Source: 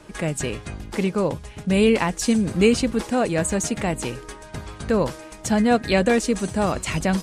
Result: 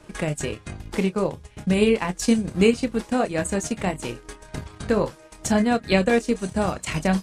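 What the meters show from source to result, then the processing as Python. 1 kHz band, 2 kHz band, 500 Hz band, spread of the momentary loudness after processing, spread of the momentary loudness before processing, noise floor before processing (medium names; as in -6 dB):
-2.0 dB, -1.5 dB, -1.0 dB, 14 LU, 13 LU, -42 dBFS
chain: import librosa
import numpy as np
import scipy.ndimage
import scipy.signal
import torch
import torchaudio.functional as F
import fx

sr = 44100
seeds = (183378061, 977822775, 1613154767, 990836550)

y = fx.chorus_voices(x, sr, voices=4, hz=0.74, base_ms=27, depth_ms=1.5, mix_pct=30)
y = fx.transient(y, sr, attack_db=4, sustain_db=-8)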